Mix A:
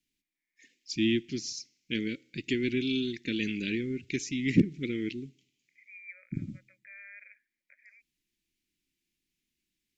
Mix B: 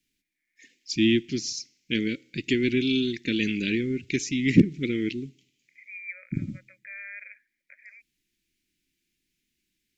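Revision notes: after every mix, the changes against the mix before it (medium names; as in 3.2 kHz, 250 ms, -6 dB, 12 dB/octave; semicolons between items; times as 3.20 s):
first voice +5.5 dB; second voice +8.5 dB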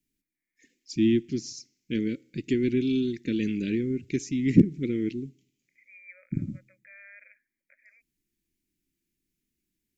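master: add peaking EQ 3.1 kHz -12 dB 2.4 oct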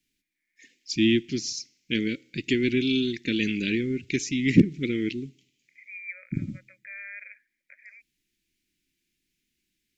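master: add peaking EQ 3.1 kHz +12 dB 2.4 oct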